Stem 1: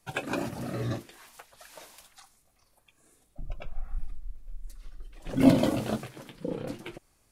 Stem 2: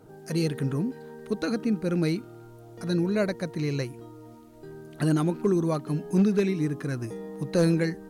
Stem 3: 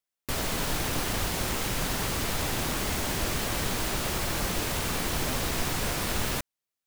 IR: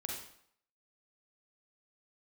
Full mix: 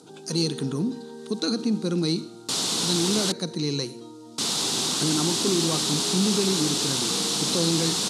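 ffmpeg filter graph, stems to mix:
-filter_complex "[0:a]acompressor=mode=upward:threshold=-32dB:ratio=2.5,volume=-17dB[a];[1:a]alimiter=limit=-19dB:level=0:latency=1:release=35,volume=2.5dB,asplit=2[b][c];[c]volume=-11.5dB[d];[2:a]adelay=2200,volume=3dB,asplit=3[e][f][g];[e]atrim=end=3.32,asetpts=PTS-STARTPTS,afade=t=out:st=3.316:d=0.004:c=hsin[h];[f]atrim=start=3.32:end=4.38,asetpts=PTS-STARTPTS,volume=0[i];[g]atrim=start=4.38,asetpts=PTS-STARTPTS,afade=t=in:d=0.004:c=hsin[j];[h][i][j]concat=n=3:v=0:a=1[k];[3:a]atrim=start_sample=2205[l];[d][l]afir=irnorm=-1:irlink=0[m];[a][b][k][m]amix=inputs=4:normalize=0,highshelf=f=2.8k:t=q:w=3:g=7,asoftclip=type=tanh:threshold=-13.5dB,highpass=f=160:w=0.5412,highpass=f=160:w=1.3066,equalizer=f=600:t=q:w=4:g=-9,equalizer=f=1.7k:t=q:w=4:g=-5,equalizer=f=3.2k:t=q:w=4:g=-6,lowpass=f=9.5k:w=0.5412,lowpass=f=9.5k:w=1.3066"

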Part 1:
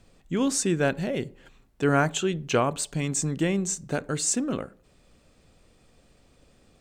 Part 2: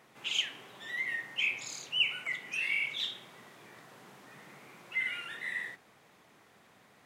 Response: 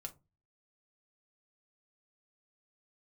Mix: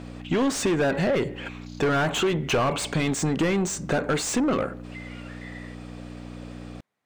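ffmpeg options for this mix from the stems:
-filter_complex "[0:a]aeval=exprs='val(0)+0.00708*(sin(2*PI*60*n/s)+sin(2*PI*2*60*n/s)/2+sin(2*PI*3*60*n/s)/3+sin(2*PI*4*60*n/s)/4+sin(2*PI*5*60*n/s)/5)':c=same,asplit=2[a][b];[b]highpass=f=720:p=1,volume=28dB,asoftclip=type=tanh:threshold=-9.5dB[c];[a][c]amix=inputs=2:normalize=0,lowpass=f=1.6k:p=1,volume=-6dB,volume=-1dB[d];[1:a]afwtdn=0.00562,acompressor=threshold=-39dB:ratio=6,volume=-3dB[e];[d][e]amix=inputs=2:normalize=0,acompressor=threshold=-21dB:ratio=3"

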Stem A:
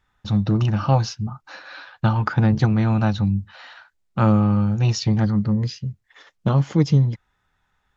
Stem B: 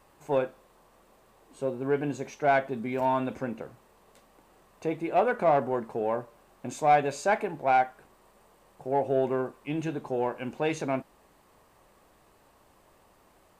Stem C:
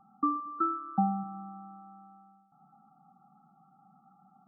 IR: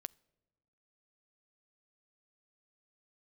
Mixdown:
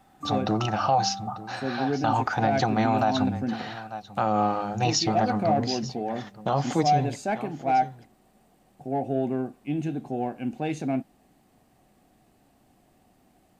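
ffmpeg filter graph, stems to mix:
-filter_complex "[0:a]bass=f=250:g=-13,treble=f=4k:g=4,bandreject=f=51.54:t=h:w=4,bandreject=f=103.08:t=h:w=4,bandreject=f=154.62:t=h:w=4,bandreject=f=206.16:t=h:w=4,bandreject=f=257.7:t=h:w=4,volume=1.5dB,asplit=2[a][b];[b]volume=-17.5dB[c];[1:a]equalizer=f=125:t=o:w=1:g=5,equalizer=f=250:t=o:w=1:g=10,equalizer=f=500:t=o:w=1:g=-5,equalizer=f=1k:t=o:w=1:g=-10,volume=-2.5dB[d];[2:a]volume=-9dB[e];[c]aecho=0:1:893:1[f];[a][d][e][f]amix=inputs=4:normalize=0,equalizer=f=740:w=4.7:g=14,alimiter=limit=-13dB:level=0:latency=1:release=56"

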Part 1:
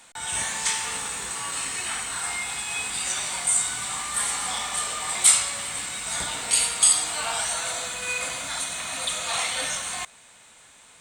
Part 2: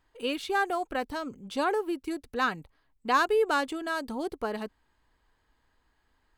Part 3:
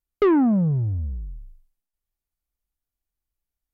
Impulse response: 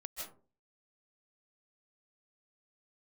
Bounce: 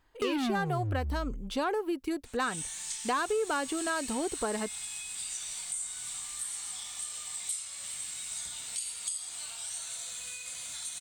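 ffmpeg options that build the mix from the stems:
-filter_complex "[0:a]acompressor=threshold=-31dB:ratio=6,highshelf=f=2.2k:g=9,acrossover=split=170|3000[a][b][c];[b]acompressor=threshold=-45dB:ratio=3[d];[a][d][c]amix=inputs=3:normalize=0,adelay=2250,volume=-11dB[e];[1:a]asoftclip=type=tanh:threshold=-17.5dB,volume=2dB[f];[2:a]asoftclip=type=hard:threshold=-25dB,volume=-2dB[g];[e][f][g]amix=inputs=3:normalize=0,acompressor=threshold=-27dB:ratio=6"

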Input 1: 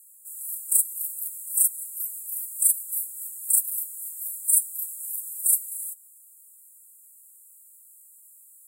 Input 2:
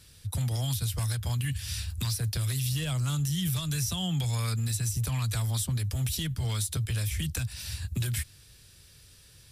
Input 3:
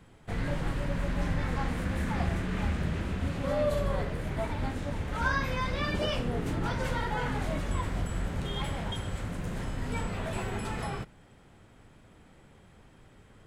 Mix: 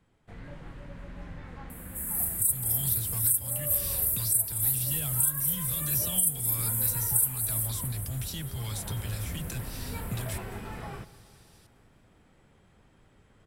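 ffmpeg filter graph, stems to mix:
-filter_complex "[0:a]bandreject=f=7.3k:w=16,aexciter=amount=1.3:drive=7.2:freq=11k,adelay=1700,volume=1dB,asplit=2[a][b];[b]volume=-13dB[c];[1:a]adelay=2150,volume=-5.5dB,asplit=2[d][e];[e]volume=-19.5dB[f];[2:a]acrossover=split=3500[g][h];[h]acompressor=threshold=-56dB:ratio=4:attack=1:release=60[i];[g][i]amix=inputs=2:normalize=0,volume=-5dB,afade=t=in:st=8.64:d=0.33:silence=0.421697,asplit=2[j][k];[k]volume=-19dB[l];[c][f][l]amix=inputs=3:normalize=0,aecho=0:1:207|414|621|828|1035|1242|1449|1656|1863|2070:1|0.6|0.36|0.216|0.13|0.0778|0.0467|0.028|0.0168|0.0101[m];[a][d][j][m]amix=inputs=4:normalize=0,alimiter=limit=-12.5dB:level=0:latency=1:release=431"

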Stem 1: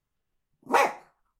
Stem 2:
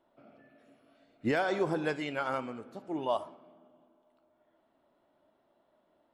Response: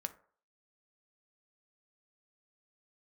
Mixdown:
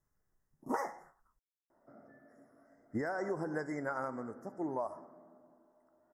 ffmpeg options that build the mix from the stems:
-filter_complex "[0:a]volume=0.5dB[a];[1:a]adelay=1700,volume=0dB[b];[a][b]amix=inputs=2:normalize=0,asuperstop=centerf=3200:order=20:qfactor=1.1,acompressor=threshold=-32dB:ratio=20"

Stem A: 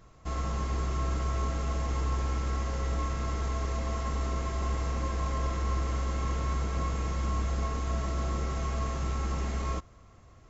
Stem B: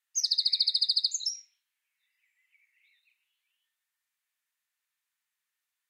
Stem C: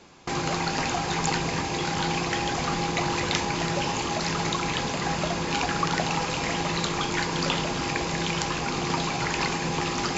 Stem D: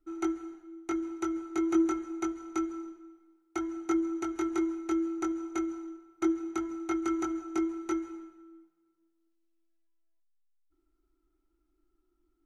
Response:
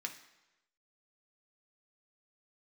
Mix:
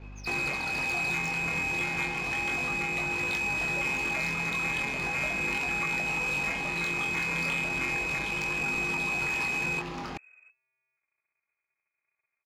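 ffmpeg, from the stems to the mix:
-filter_complex "[0:a]lowshelf=f=240:g=12,volume=20.5dB,asoftclip=hard,volume=-20.5dB,volume=-8dB[a];[1:a]volume=-9dB[b];[2:a]aeval=exprs='val(0)+0.00708*(sin(2*PI*50*n/s)+sin(2*PI*2*50*n/s)/2+sin(2*PI*3*50*n/s)/3+sin(2*PI*4*50*n/s)/4+sin(2*PI*5*50*n/s)/5)':c=same,volume=1dB[c];[3:a]aeval=exprs='val(0)*sgn(sin(2*PI*130*n/s))':c=same,adelay=250,volume=-6dB[d];[b][c]amix=inputs=2:normalize=0,flanger=delay=19.5:depth=4.4:speed=0.34,acompressor=threshold=-33dB:ratio=6,volume=0dB[e];[a][d]amix=inputs=2:normalize=0,lowpass=f=2.2k:t=q:w=0.5098,lowpass=f=2.2k:t=q:w=0.6013,lowpass=f=2.2k:t=q:w=0.9,lowpass=f=2.2k:t=q:w=2.563,afreqshift=-2600,alimiter=limit=-22dB:level=0:latency=1:release=437,volume=0dB[f];[e][f]amix=inputs=2:normalize=0,adynamicsmooth=sensitivity=5.5:basefreq=2.5k"

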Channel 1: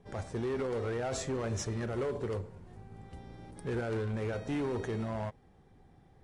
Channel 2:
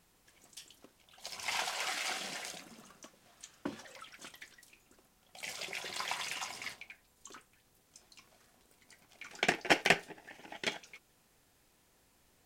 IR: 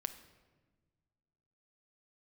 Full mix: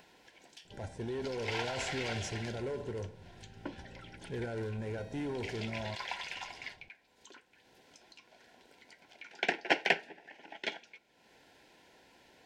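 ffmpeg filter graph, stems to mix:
-filter_complex "[0:a]adelay=650,volume=-4dB[a];[1:a]highpass=40,acrossover=split=230 5000:gain=0.251 1 0.112[b][c][d];[b][c][d]amix=inputs=3:normalize=0,acompressor=mode=upward:threshold=-49dB:ratio=2.5,volume=-2.5dB,asplit=2[e][f];[f]volume=-11.5dB[g];[2:a]atrim=start_sample=2205[h];[g][h]afir=irnorm=-1:irlink=0[i];[a][e][i]amix=inputs=3:normalize=0,asuperstop=centerf=1200:order=8:qfactor=4.5"

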